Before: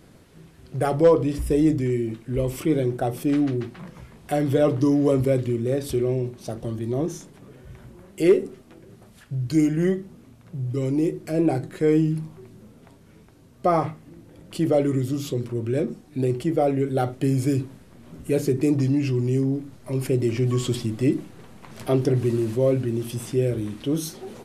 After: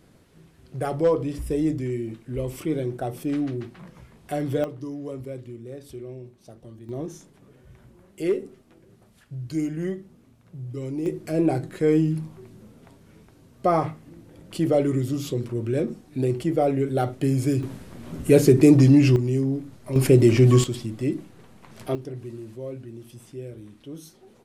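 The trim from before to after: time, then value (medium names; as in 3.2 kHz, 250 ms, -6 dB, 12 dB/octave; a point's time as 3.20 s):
-4.5 dB
from 4.64 s -14.5 dB
from 6.89 s -7 dB
from 11.06 s -0.5 dB
from 17.63 s +7 dB
from 19.16 s -1 dB
from 19.96 s +7 dB
from 20.64 s -4.5 dB
from 21.95 s -14.5 dB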